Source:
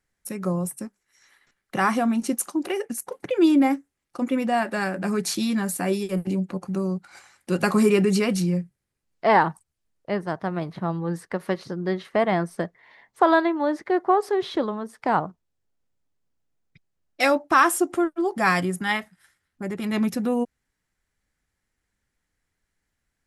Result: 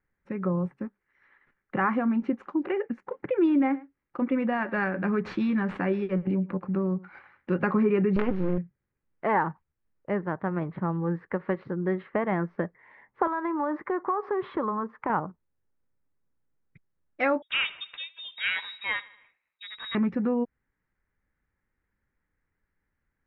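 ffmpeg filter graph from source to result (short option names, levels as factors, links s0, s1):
-filter_complex "[0:a]asettb=1/sr,asplit=3[s0][s1][s2];[s0]atrim=end=3.434[s3];[s1]atrim=start=3.43:end=7.54,asetpts=PTS-STARTPTS,afade=t=in:d=0.004:c=qsin,afade=t=out:st=4.106:d=0.004:c=qsin,aemphasis=mode=production:type=75kf,adynamicsmooth=sensitivity=7:basefreq=3600,aecho=1:1:107:0.0708,atrim=end_sample=181251[s4];[s2]atrim=start=7.536[s5];[s3][s4]acrossfade=d=0.004:c1=hsin:c2=qsin[s6];[s6][s5]acrossfade=d=0.004:c1=qsin:c2=hsin,asettb=1/sr,asplit=3[s7][s8][s9];[s7]atrim=end=8.164[s10];[s8]atrim=start=8.16:end=8.58,asetpts=PTS-STARTPTS,afade=t=in:d=0.004:c=qsin,afade=t=out:st=0.416:d=0.004:c=qsin,equalizer=f=310:t=o:w=0.64:g=13.5,acrusher=bits=3:dc=4:mix=0:aa=0.000001[s11];[s9]atrim=start=8.576[s12];[s10][s11]acrossfade=d=0.004:c1=hsin:c2=qsin[s13];[s13][s12]acrossfade=d=0.004:c1=qsin:c2=hsin,asettb=1/sr,asplit=3[s14][s15][s16];[s14]atrim=end=13.274[s17];[s15]atrim=start=13.27:end=15.1,asetpts=PTS-STARTPTS,afade=t=in:d=0.004:c=qsin,afade=t=out:st=1.826:d=0.004:c=qsin,equalizer=f=1100:t=o:w=0.6:g=10.5,acompressor=threshold=0.0631:ratio=3:attack=3.2:release=140:knee=1:detection=peak[s18];[s16]atrim=start=15.096[s19];[s17][s18]acrossfade=d=0.004:c1=hsin:c2=qsin[s20];[s20][s19]acrossfade=d=0.004:c1=qsin:c2=hsin,asettb=1/sr,asplit=3[s21][s22][s23];[s21]atrim=end=17.424[s24];[s22]atrim=start=17.42:end=19.95,asetpts=PTS-STARTPTS,afade=t=in:d=0.004:c=qsin,afade=t=out:st=2.526:d=0.004:c=qsin,equalizer=f=210:w=2.7:g=9,aecho=1:1:77|154|231|308:0.0891|0.0508|0.029|0.0165,atrim=end_sample=111573,lowpass=f=3400:t=q:w=0.5098,lowpass=f=3400:t=q:w=0.6013,lowpass=f=3400:t=q:w=0.9,lowpass=f=3400:t=q:w=2.563,afreqshift=-4000[s25];[s23]atrim=start=19.946[s26];[s24][s25]acrossfade=d=0.004:c1=hsin:c2=qsin[s27];[s27][s26]acrossfade=d=0.004:c1=qsin:c2=hsin,lowpass=f=2100:w=0.5412,lowpass=f=2100:w=1.3066,acompressor=threshold=0.0708:ratio=2,equalizer=f=690:w=7.3:g=-9"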